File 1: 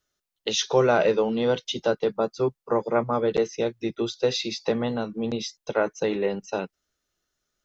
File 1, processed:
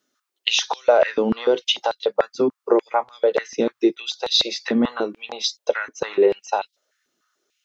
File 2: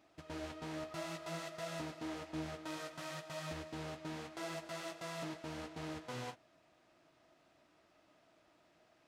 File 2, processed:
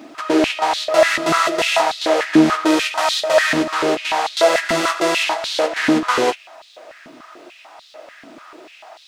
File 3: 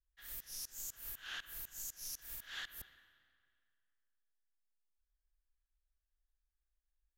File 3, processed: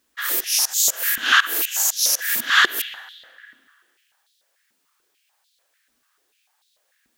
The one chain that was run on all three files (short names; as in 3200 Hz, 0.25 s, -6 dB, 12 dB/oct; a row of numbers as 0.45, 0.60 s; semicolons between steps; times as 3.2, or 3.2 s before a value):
compressor 2.5:1, threshold -27 dBFS; bell 13000 Hz -3 dB 0.44 oct; stepped high-pass 6.8 Hz 250–3800 Hz; normalise peaks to -1.5 dBFS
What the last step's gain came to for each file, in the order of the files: +5.0, +25.0, +26.0 dB